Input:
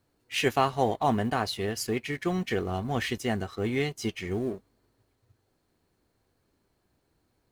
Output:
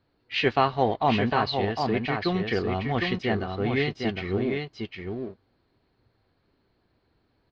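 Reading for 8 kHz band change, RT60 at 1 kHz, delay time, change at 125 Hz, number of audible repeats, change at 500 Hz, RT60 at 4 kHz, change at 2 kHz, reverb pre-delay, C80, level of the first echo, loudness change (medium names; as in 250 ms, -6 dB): under -15 dB, no reverb, 757 ms, +3.5 dB, 1, +3.5 dB, no reverb, +4.0 dB, no reverb, no reverb, -5.0 dB, +2.5 dB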